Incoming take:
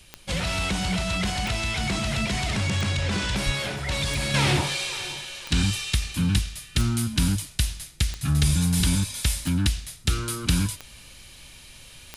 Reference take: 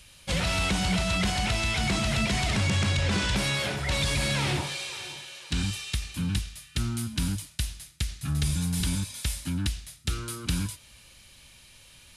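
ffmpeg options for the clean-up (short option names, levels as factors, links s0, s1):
-filter_complex "[0:a]adeclick=t=4,asplit=3[s0][s1][s2];[s0]afade=t=out:st=3.45:d=0.02[s3];[s1]highpass=f=140:w=0.5412,highpass=f=140:w=1.3066,afade=t=in:st=3.45:d=0.02,afade=t=out:st=3.57:d=0.02[s4];[s2]afade=t=in:st=3.57:d=0.02[s5];[s3][s4][s5]amix=inputs=3:normalize=0,agate=range=0.0891:threshold=0.0126,asetnsamples=n=441:p=0,asendcmd='4.34 volume volume -6dB',volume=1"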